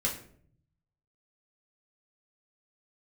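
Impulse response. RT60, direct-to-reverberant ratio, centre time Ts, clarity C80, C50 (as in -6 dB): 0.60 s, -2.5 dB, 22 ms, 12.5 dB, 8.5 dB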